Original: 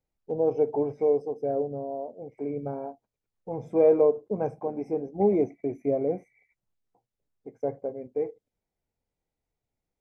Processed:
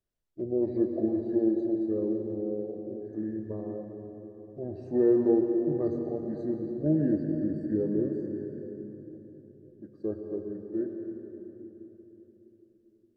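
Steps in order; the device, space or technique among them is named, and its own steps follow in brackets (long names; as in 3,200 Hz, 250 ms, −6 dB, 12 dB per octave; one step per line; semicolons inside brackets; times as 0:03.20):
slowed and reverbed (speed change −24%; convolution reverb RT60 3.6 s, pre-delay 104 ms, DRR 4 dB)
level −3.5 dB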